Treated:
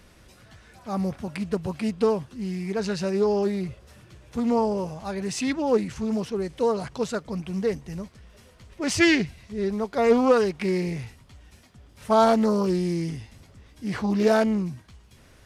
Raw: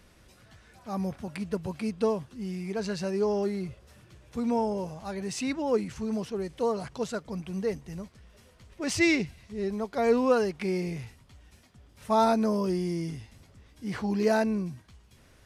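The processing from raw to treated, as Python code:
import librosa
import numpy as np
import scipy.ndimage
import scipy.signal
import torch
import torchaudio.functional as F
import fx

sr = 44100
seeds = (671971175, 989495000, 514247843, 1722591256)

y = fx.doppler_dist(x, sr, depth_ms=0.17)
y = F.gain(torch.from_numpy(y), 4.5).numpy()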